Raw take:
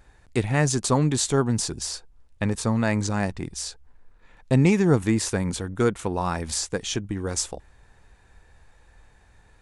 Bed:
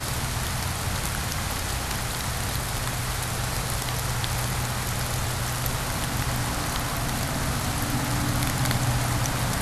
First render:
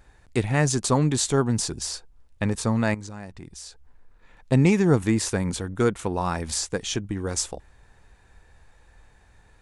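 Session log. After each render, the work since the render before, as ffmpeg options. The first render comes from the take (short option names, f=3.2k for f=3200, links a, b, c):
-filter_complex "[0:a]asettb=1/sr,asplit=3[a][b][c];[a]atrim=end=2.944[d];[b]atrim=start=2.94:end=4.52,asetpts=PTS-STARTPTS,afade=t=in:d=0.004:c=qsin,afade=t=out:st=1.576:d=0.004:c=qsin,acompressor=threshold=-44dB:ratio=2:attack=3.2:release=140:knee=1:detection=peak[e];[c]atrim=start=4.516[f];[d][e]acrossfade=d=0.004:c1=hsin:c2=qsin[g];[g][f]acrossfade=d=0.004:c1=qsin:c2=hsin"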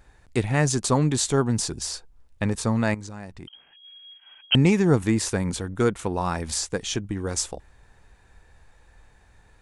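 -filter_complex "[0:a]asettb=1/sr,asplit=3[a][b][c];[a]atrim=end=3.474[d];[b]atrim=start=3.47:end=4.55,asetpts=PTS-STARTPTS,afade=t=in:d=0.004:c=qsin,afade=t=out:st=1.076:d=0.004:c=qsin,lowpass=f=2.8k:t=q:w=0.5098,lowpass=f=2.8k:t=q:w=0.6013,lowpass=f=2.8k:t=q:w=0.9,lowpass=f=2.8k:t=q:w=2.563,afreqshift=-3300[e];[c]atrim=start=4.546[f];[d][e]acrossfade=d=0.004:c1=hsin:c2=qsin[g];[g][f]acrossfade=d=0.004:c1=qsin:c2=hsin"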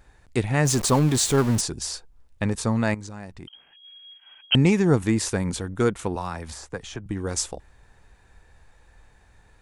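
-filter_complex "[0:a]asettb=1/sr,asplit=3[a][b][c];[a]atrim=end=0.654[d];[b]atrim=start=0.65:end=1.61,asetpts=PTS-STARTPTS,afade=t=in:d=0.004:c=qsin,afade=t=out:st=0.956:d=0.004:c=qsin,aeval=exprs='val(0)+0.5*0.0473*sgn(val(0))':c=same[e];[c]atrim=start=1.606[f];[d][e]acrossfade=d=0.004:c1=hsin:c2=qsin[g];[g][f]acrossfade=d=0.004:c1=qsin:c2=hsin,asettb=1/sr,asplit=3[h][i][j];[h]atrim=end=6.154[k];[i]atrim=start=6.15:end=7.06,asetpts=PTS-STARTPTS,afade=t=in:d=0.004:c=qsin,afade=t=out:st=0.906:d=0.004:c=qsin,acrossover=split=150|580|1800[l][m][n][o];[l]acompressor=threshold=-37dB:ratio=3[p];[m]acompressor=threshold=-41dB:ratio=3[q];[n]acompressor=threshold=-30dB:ratio=3[r];[o]acompressor=threshold=-44dB:ratio=3[s];[p][q][r][s]amix=inputs=4:normalize=0[t];[j]atrim=start=7.056[u];[k][t]acrossfade=d=0.004:c1=hsin:c2=qsin[v];[v][u]acrossfade=d=0.004:c1=qsin:c2=hsin"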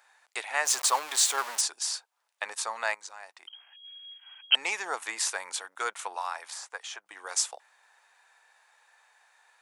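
-af "highpass=f=750:w=0.5412,highpass=f=750:w=1.3066"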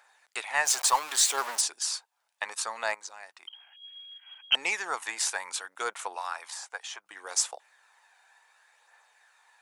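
-af "aphaser=in_gain=1:out_gain=1:delay=1.4:decay=0.32:speed=0.67:type=triangular,aeval=exprs='0.376*(cos(1*acos(clip(val(0)/0.376,-1,1)))-cos(1*PI/2))+0.00473*(cos(4*acos(clip(val(0)/0.376,-1,1)))-cos(4*PI/2))':c=same"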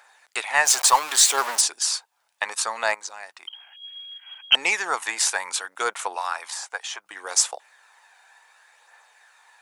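-af "volume=7dB"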